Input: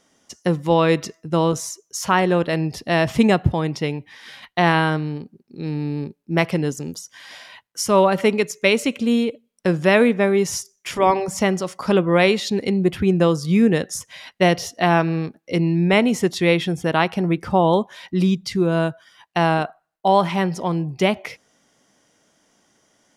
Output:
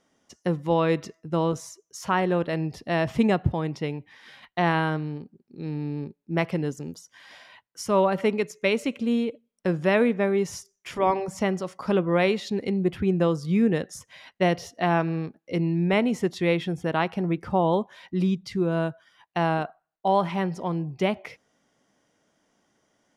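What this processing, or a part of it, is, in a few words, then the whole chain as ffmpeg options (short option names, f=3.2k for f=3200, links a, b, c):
behind a face mask: -af "highshelf=f=3.5k:g=-8,volume=-5.5dB"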